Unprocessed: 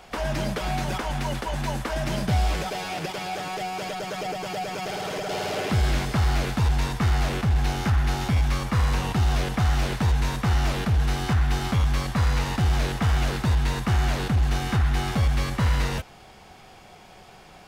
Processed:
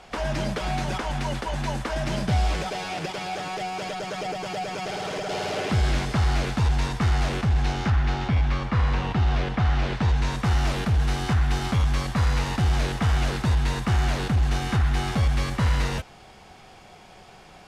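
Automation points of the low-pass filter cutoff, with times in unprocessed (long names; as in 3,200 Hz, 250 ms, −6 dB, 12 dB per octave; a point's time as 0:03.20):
0:07.36 9,000 Hz
0:08.27 3,600 Hz
0:09.80 3,600 Hz
0:10.21 6,200 Hz
0:10.48 11,000 Hz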